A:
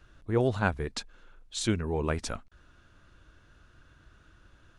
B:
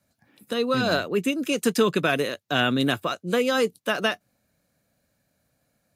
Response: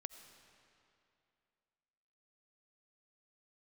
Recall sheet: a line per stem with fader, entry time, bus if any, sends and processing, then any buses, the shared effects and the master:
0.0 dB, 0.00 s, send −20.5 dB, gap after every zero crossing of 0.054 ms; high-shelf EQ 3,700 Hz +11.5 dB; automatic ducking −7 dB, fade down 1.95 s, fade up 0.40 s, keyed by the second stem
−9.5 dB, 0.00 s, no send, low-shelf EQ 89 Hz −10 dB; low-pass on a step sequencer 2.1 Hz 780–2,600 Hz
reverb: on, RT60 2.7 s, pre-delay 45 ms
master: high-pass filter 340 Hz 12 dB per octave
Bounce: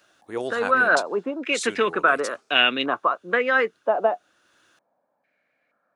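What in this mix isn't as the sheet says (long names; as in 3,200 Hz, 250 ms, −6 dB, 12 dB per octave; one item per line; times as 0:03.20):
stem A: missing gap after every zero crossing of 0.054 ms
stem B −9.5 dB → 0.0 dB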